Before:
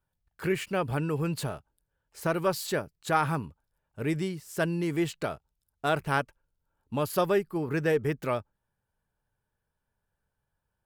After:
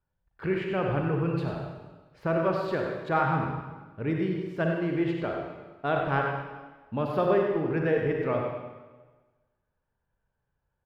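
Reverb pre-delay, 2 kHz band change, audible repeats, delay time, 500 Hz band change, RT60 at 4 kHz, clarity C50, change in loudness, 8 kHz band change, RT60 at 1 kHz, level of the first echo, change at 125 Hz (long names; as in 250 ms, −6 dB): 33 ms, 0.0 dB, 1, 96 ms, +2.5 dB, 1.2 s, 0.5 dB, +1.5 dB, below −20 dB, 1.3 s, −7.0 dB, +2.0 dB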